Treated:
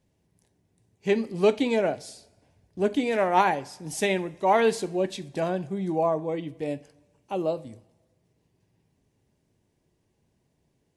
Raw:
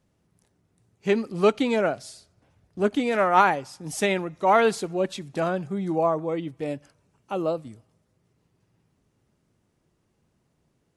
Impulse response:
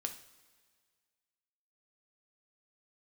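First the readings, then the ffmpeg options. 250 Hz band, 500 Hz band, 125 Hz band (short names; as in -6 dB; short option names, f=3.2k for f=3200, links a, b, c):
-1.5 dB, -1.0 dB, -1.5 dB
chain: -filter_complex "[0:a]equalizer=f=1.3k:t=o:w=0.29:g=-12.5,asplit=2[a][b];[1:a]atrim=start_sample=2205,asetrate=66150,aresample=44100[c];[b][c]afir=irnorm=-1:irlink=0,volume=3dB[d];[a][d]amix=inputs=2:normalize=0,volume=-6dB"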